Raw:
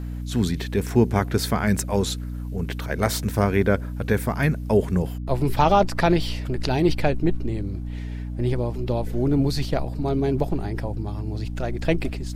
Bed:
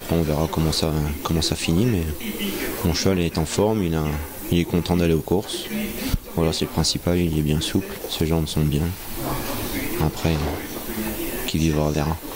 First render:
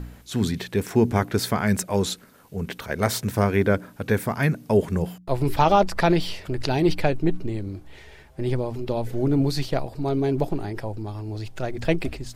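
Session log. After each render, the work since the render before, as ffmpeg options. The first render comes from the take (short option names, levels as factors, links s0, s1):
-af "bandreject=f=60:t=h:w=4,bandreject=f=120:t=h:w=4,bandreject=f=180:t=h:w=4,bandreject=f=240:t=h:w=4,bandreject=f=300:t=h:w=4"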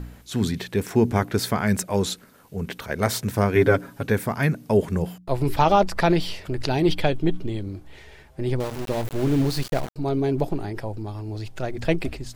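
-filter_complex "[0:a]asettb=1/sr,asplit=3[s0][s1][s2];[s0]atrim=end=3.554[s3];[s1]atrim=start=3.55:end=4.06,asetpts=PTS-STARTPTS,afade=t=in:d=0.004:c=qsin,afade=t=out:st=0.506:d=0.004:c=qsin,aecho=1:1:7.3:0.94,atrim=end_sample=22491[s4];[s2]atrim=start=4.056[s5];[s3][s4]acrossfade=d=0.004:c1=hsin:c2=qsin[s6];[s6][s5]acrossfade=d=0.004:c1=qsin:c2=hsin,asettb=1/sr,asplit=3[s7][s8][s9];[s7]atrim=end=6.874[s10];[s8]atrim=start=6.87:end=7.63,asetpts=PTS-STARTPTS,afade=t=in:d=0.004:c=qsin,afade=t=out:st=0.756:d=0.004:c=qsin,equalizer=f=3300:w=7.8:g=12.5[s11];[s9]atrim=start=7.626[s12];[s10][s11]acrossfade=d=0.004:c1=hsin:c2=qsin[s13];[s13][s12]acrossfade=d=0.004:c1=qsin:c2=hsin,asettb=1/sr,asplit=3[s14][s15][s16];[s14]atrim=end=8.604[s17];[s15]atrim=start=8.6:end=9.96,asetpts=PTS-STARTPTS,afade=t=in:d=0.004:c=qsin,afade=t=out:st=1.356:d=0.004:c=qsin,aeval=exprs='val(0)*gte(abs(val(0)),0.0335)':c=same[s18];[s16]atrim=start=9.956[s19];[s17][s18]acrossfade=d=0.004:c1=hsin:c2=qsin[s20];[s20][s19]acrossfade=d=0.004:c1=qsin:c2=hsin"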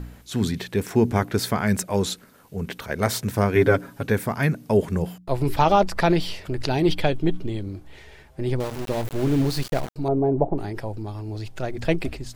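-filter_complex "[0:a]asettb=1/sr,asplit=3[s0][s1][s2];[s0]atrim=end=10.084[s3];[s1]atrim=start=10.08:end=10.58,asetpts=PTS-STARTPTS,afade=t=in:d=0.004:c=qsin,afade=t=out:st=0.496:d=0.004:c=qsin,lowpass=f=760:t=q:w=2[s4];[s2]atrim=start=10.576[s5];[s3][s4]acrossfade=d=0.004:c1=hsin:c2=qsin[s6];[s6][s5]acrossfade=d=0.004:c1=qsin:c2=hsin"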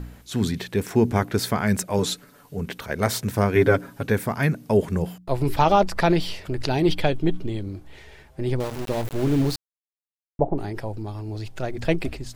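-filter_complex "[0:a]asettb=1/sr,asplit=3[s0][s1][s2];[s0]atrim=end=1.984[s3];[s1]atrim=start=1.98:end=2.59,asetpts=PTS-STARTPTS,afade=t=in:d=0.004:c=qsin,afade=t=out:st=0.606:d=0.004:c=qsin,aecho=1:1:6.9:0.64,atrim=end_sample=26901[s4];[s2]atrim=start=2.586[s5];[s3][s4]acrossfade=d=0.004:c1=hsin:c2=qsin[s6];[s6][s5]acrossfade=d=0.004:c1=qsin:c2=hsin,asplit=3[s7][s8][s9];[s7]atrim=end=9.56,asetpts=PTS-STARTPTS,afade=t=out:st=9.556:d=0.004:c=hsin[s10];[s8]atrim=start=9.56:end=10.39,asetpts=PTS-STARTPTS,volume=0[s11];[s9]atrim=start=10.39,asetpts=PTS-STARTPTS,afade=t=in:d=0.004:c=hsin[s12];[s10][s11][s12]concat=n=3:v=0:a=1"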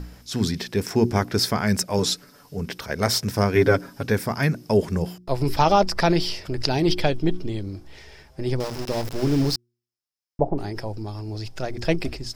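-af "equalizer=f=5200:t=o:w=0.31:g=13.5,bandreject=f=119.6:t=h:w=4,bandreject=f=239.2:t=h:w=4,bandreject=f=358.8:t=h:w=4"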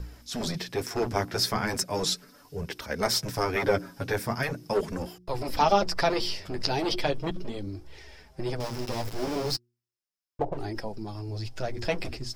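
-filter_complex "[0:a]acrossover=split=390[s0][s1];[s0]aeval=exprs='0.0631*(abs(mod(val(0)/0.0631+3,4)-2)-1)':c=same[s2];[s2][s1]amix=inputs=2:normalize=0,flanger=delay=1.8:depth=9.4:regen=-18:speed=0.38:shape=triangular"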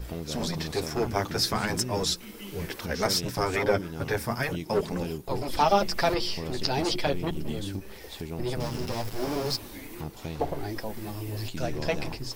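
-filter_complex "[1:a]volume=0.168[s0];[0:a][s0]amix=inputs=2:normalize=0"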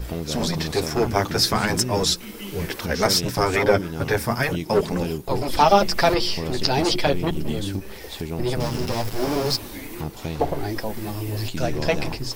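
-af "volume=2.11"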